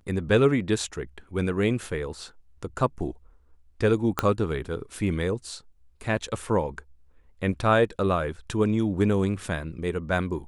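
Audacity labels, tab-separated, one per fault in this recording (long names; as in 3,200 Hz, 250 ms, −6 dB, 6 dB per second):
4.190000	4.190000	click −7 dBFS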